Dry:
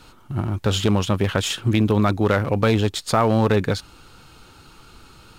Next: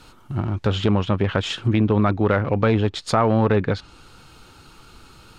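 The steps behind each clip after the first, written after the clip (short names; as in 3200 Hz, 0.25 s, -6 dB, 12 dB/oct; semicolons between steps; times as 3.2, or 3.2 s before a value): treble ducked by the level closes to 2500 Hz, closed at -16 dBFS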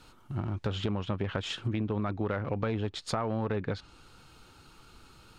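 compressor, threshold -19 dBFS, peak gain reduction 6 dB; gain -8 dB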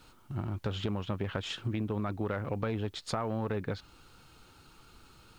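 requantised 12-bit, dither triangular; gain -2 dB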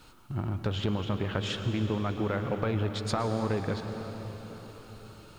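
reverb RT60 5.0 s, pre-delay 0.105 s, DRR 6 dB; gain +3 dB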